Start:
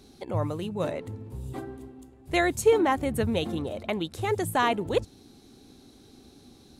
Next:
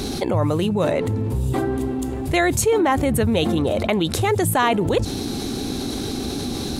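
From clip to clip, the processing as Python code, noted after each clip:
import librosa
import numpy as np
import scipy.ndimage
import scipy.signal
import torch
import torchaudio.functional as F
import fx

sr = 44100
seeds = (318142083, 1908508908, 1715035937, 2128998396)

y = fx.env_flatten(x, sr, amount_pct=70)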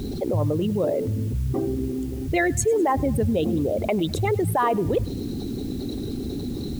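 y = fx.envelope_sharpen(x, sr, power=2.0)
y = fx.echo_feedback(y, sr, ms=102, feedback_pct=51, wet_db=-22.0)
y = fx.quant_dither(y, sr, seeds[0], bits=8, dither='triangular')
y = y * 10.0 ** (-3.0 / 20.0)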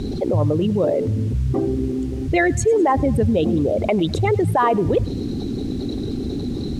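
y = fx.air_absorb(x, sr, metres=63.0)
y = y * 10.0 ** (4.5 / 20.0)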